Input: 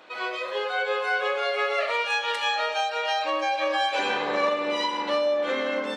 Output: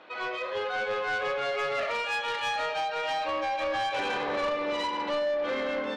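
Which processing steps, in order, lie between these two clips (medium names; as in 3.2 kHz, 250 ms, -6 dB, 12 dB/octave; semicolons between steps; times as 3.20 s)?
distance through air 150 m; saturation -24.5 dBFS, distortion -13 dB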